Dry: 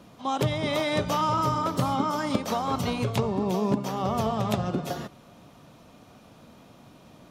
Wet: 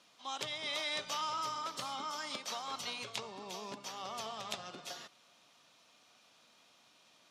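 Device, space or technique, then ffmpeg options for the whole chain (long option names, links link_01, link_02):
piezo pickup straight into a mixer: -af "lowpass=5000,aderivative,volume=4dB"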